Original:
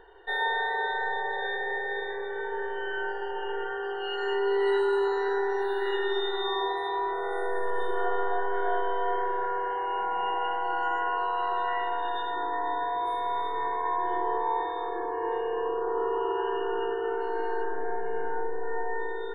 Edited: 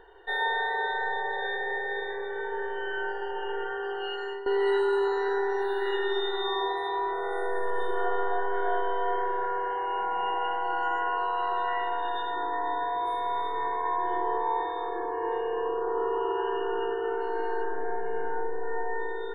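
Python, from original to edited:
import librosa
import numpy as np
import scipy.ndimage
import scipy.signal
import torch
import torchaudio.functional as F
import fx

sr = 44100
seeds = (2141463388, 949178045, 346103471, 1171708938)

y = fx.edit(x, sr, fx.fade_out_to(start_s=4.04, length_s=0.42, floor_db=-15.0), tone=tone)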